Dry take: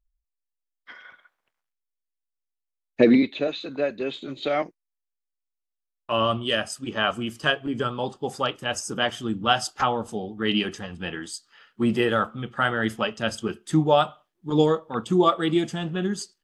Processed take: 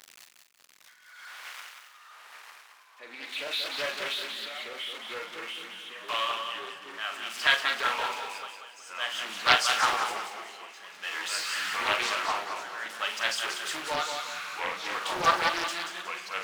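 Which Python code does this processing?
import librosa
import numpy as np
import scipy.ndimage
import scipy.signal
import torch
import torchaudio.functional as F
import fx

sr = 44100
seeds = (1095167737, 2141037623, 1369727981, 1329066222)

y = x + 0.5 * 10.0 ** (-27.5 / 20.0) * np.sign(x)
y = fx.lowpass(y, sr, hz=3500.0, slope=6)
y = y * (1.0 - 0.96 / 2.0 + 0.96 / 2.0 * np.cos(2.0 * np.pi * 0.52 * (np.arange(len(y)) / sr)))
y = scipy.signal.sosfilt(scipy.signal.butter(2, 1400.0, 'highpass', fs=sr, output='sos'), y)
y = fx.doubler(y, sr, ms=41.0, db=-7)
y = fx.echo_feedback(y, sr, ms=184, feedback_pct=39, wet_db=-6.0)
y = fx.echo_pitch(y, sr, ms=599, semitones=-3, count=2, db_per_echo=-6.0)
y = fx.doppler_dist(y, sr, depth_ms=0.58)
y = y * 10.0 ** (3.0 / 20.0)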